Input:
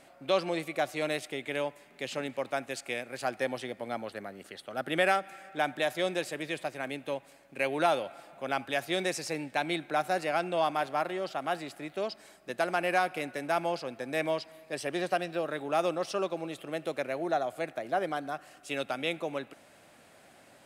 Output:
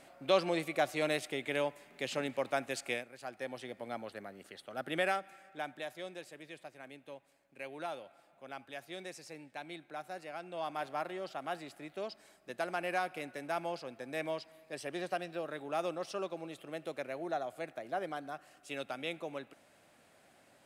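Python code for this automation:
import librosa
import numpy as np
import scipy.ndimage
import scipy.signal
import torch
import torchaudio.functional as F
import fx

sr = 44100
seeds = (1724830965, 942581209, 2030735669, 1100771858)

y = fx.gain(x, sr, db=fx.line((2.94, -1.0), (3.14, -13.5), (3.76, -5.5), (4.96, -5.5), (6.1, -14.5), (10.41, -14.5), (10.85, -7.0)))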